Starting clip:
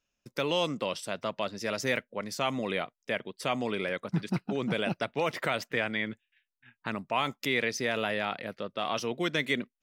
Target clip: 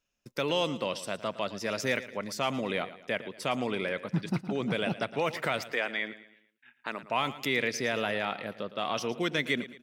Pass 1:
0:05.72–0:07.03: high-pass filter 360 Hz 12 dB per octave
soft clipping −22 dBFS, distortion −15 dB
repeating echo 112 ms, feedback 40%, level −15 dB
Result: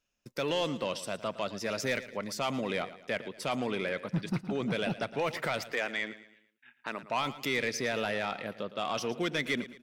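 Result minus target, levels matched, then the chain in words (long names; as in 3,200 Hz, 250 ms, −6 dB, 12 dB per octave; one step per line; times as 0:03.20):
soft clipping: distortion +19 dB
0:05.72–0:07.03: high-pass filter 360 Hz 12 dB per octave
soft clipping −10 dBFS, distortion −33 dB
repeating echo 112 ms, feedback 40%, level −15 dB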